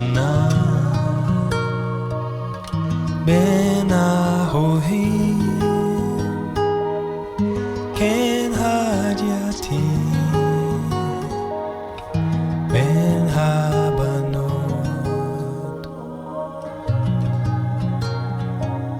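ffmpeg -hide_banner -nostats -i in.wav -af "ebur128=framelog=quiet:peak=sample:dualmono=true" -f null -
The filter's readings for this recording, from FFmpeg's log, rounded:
Integrated loudness:
  I:         -17.5 LUFS
  Threshold: -27.6 LUFS
Loudness range:
  LRA:         5.5 LU
  Threshold: -37.6 LUFS
  LRA low:   -21.0 LUFS
  LRA high:  -15.4 LUFS
Sample peak:
  Peak:       -5.9 dBFS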